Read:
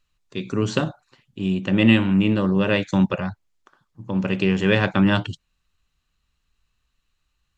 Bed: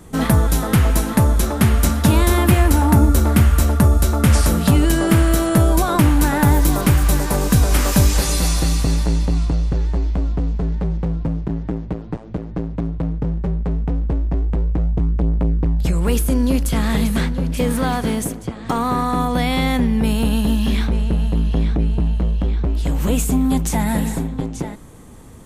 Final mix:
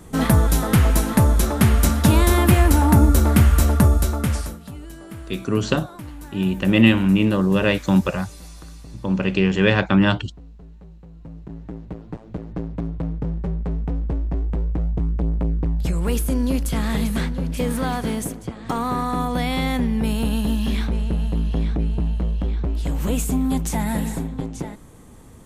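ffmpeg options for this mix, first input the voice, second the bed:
-filter_complex "[0:a]adelay=4950,volume=1.19[s0];[1:a]volume=7.5,afade=t=out:st=3.8:d=0.79:silence=0.0841395,afade=t=in:st=11.11:d=1.44:silence=0.11885[s1];[s0][s1]amix=inputs=2:normalize=0"

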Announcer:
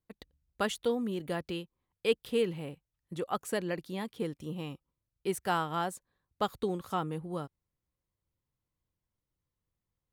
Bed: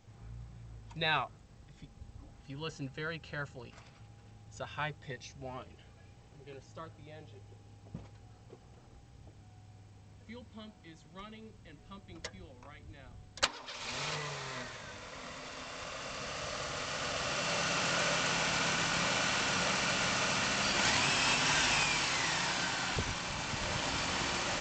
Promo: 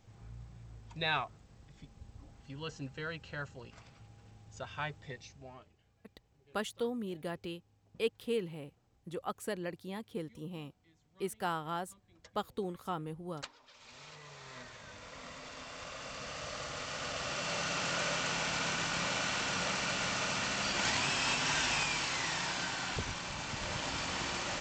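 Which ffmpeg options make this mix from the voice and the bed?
-filter_complex "[0:a]adelay=5950,volume=0.562[s0];[1:a]volume=3.55,afade=t=out:st=5.05:d=0.7:silence=0.211349,afade=t=in:st=14.15:d=0.94:silence=0.237137[s1];[s0][s1]amix=inputs=2:normalize=0"

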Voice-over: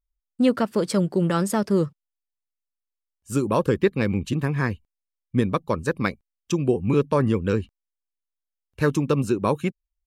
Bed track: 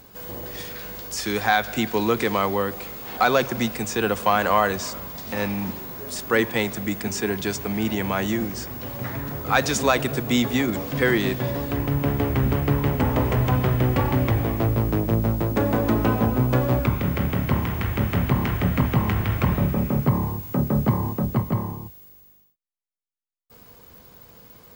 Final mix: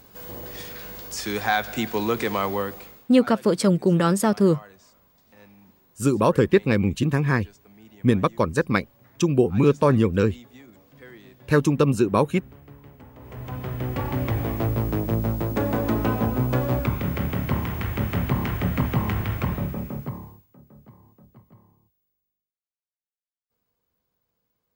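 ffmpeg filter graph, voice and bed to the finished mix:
-filter_complex "[0:a]adelay=2700,volume=1.33[s0];[1:a]volume=10.6,afade=t=out:st=2.59:d=0.5:silence=0.0707946,afade=t=in:st=13.19:d=1.32:silence=0.0707946,afade=t=out:st=19.18:d=1.29:silence=0.0473151[s1];[s0][s1]amix=inputs=2:normalize=0"

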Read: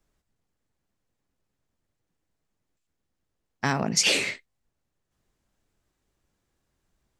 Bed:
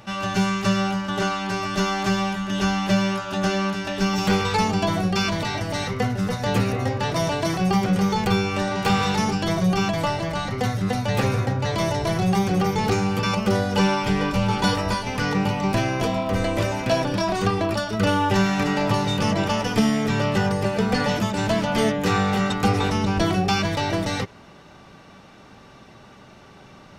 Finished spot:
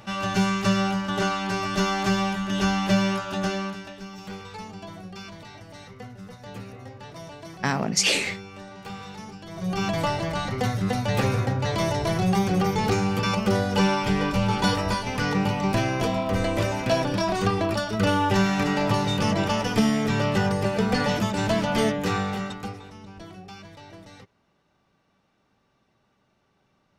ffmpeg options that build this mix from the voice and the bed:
-filter_complex "[0:a]adelay=4000,volume=1.06[s0];[1:a]volume=5.62,afade=t=out:st=3.17:d=0.85:silence=0.149624,afade=t=in:st=9.51:d=0.45:silence=0.158489,afade=t=out:st=21.79:d=1.02:silence=0.1[s1];[s0][s1]amix=inputs=2:normalize=0"

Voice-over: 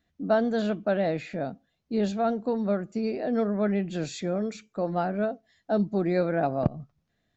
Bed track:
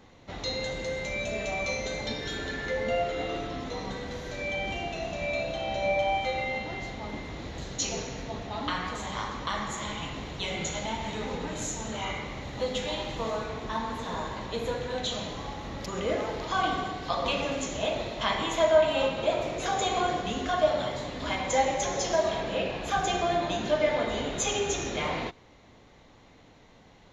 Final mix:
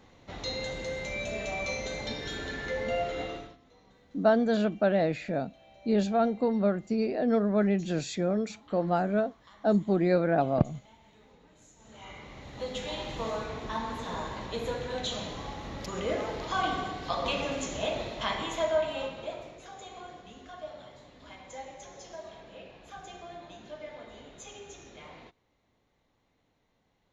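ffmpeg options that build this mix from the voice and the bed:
-filter_complex "[0:a]adelay=3950,volume=1.06[s0];[1:a]volume=10.6,afade=t=out:st=3.21:d=0.36:silence=0.0749894,afade=t=in:st=11.76:d=1.45:silence=0.0707946,afade=t=out:st=17.97:d=1.69:silence=0.158489[s1];[s0][s1]amix=inputs=2:normalize=0"

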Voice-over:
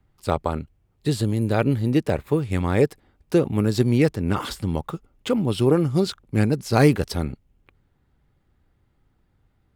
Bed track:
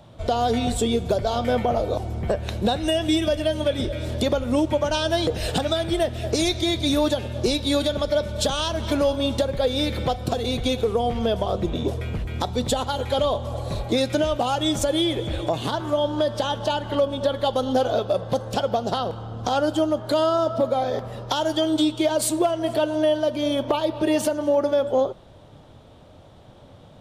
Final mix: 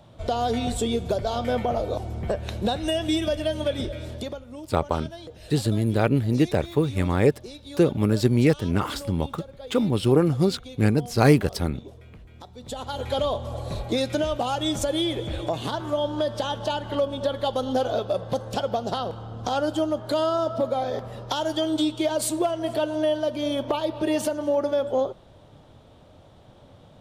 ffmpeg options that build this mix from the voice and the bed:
-filter_complex "[0:a]adelay=4450,volume=0.944[s0];[1:a]volume=4.22,afade=t=out:st=3.78:d=0.68:silence=0.16788,afade=t=in:st=12.61:d=0.46:silence=0.16788[s1];[s0][s1]amix=inputs=2:normalize=0"

